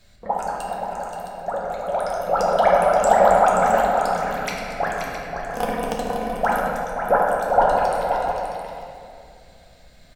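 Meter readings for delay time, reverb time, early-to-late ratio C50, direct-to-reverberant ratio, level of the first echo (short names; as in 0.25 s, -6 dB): 0.528 s, 2.5 s, -2.0 dB, -4.5 dB, -7.5 dB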